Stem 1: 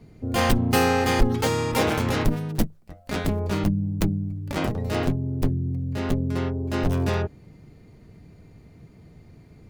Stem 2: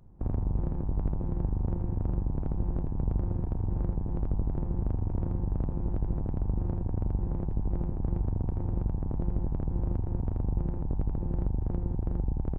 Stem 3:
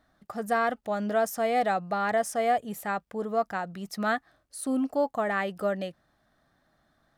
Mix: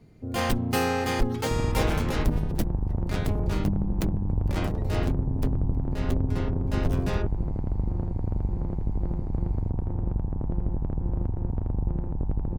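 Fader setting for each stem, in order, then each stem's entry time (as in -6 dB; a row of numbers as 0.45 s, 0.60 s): -5.0 dB, +2.0 dB, mute; 0.00 s, 1.30 s, mute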